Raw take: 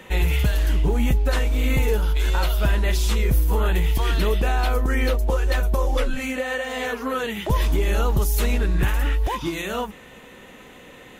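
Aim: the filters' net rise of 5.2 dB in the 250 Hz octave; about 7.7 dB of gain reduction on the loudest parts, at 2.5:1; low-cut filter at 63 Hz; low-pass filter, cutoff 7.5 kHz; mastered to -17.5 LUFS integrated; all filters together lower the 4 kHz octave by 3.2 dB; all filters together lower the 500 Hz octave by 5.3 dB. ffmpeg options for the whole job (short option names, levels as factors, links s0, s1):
-af "highpass=63,lowpass=7500,equalizer=f=250:t=o:g=8.5,equalizer=f=500:t=o:g=-9,equalizer=f=4000:t=o:g=-4,acompressor=threshold=0.0447:ratio=2.5,volume=4.22"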